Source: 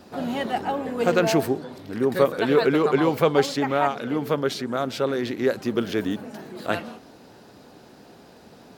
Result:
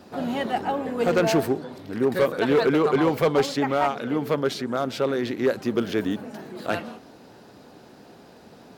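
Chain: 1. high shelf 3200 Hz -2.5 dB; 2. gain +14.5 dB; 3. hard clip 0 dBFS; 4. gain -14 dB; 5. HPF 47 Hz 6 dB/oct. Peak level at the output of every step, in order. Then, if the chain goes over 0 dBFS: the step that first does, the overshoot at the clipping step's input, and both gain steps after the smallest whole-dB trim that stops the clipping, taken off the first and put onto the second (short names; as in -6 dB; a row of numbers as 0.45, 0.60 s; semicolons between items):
-6.5, +8.0, 0.0, -14.0, -12.0 dBFS; step 2, 8.0 dB; step 2 +6.5 dB, step 4 -6 dB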